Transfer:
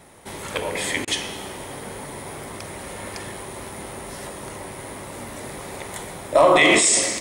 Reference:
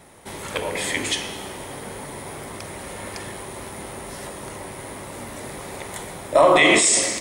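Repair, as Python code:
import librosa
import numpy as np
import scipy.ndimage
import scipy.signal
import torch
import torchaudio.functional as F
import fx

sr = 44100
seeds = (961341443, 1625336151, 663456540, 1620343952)

y = fx.fix_declip(x, sr, threshold_db=-6.5)
y = fx.fix_interpolate(y, sr, at_s=(1.05,), length_ms=24.0)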